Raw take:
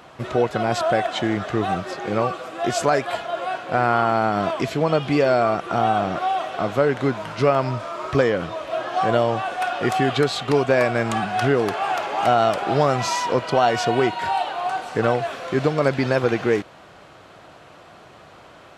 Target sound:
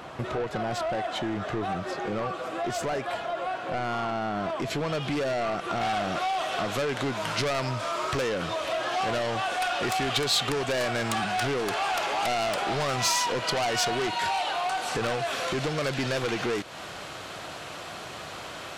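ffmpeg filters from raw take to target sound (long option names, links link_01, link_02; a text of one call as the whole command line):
ffmpeg -i in.wav -af "asoftclip=type=tanh:threshold=-21dB,acompressor=threshold=-35dB:ratio=3,asetnsamples=nb_out_samples=441:pad=0,asendcmd='4.7 highshelf g 4.5;5.81 highshelf g 11',highshelf=frequency=2300:gain=-2.5,volume=4.5dB" out.wav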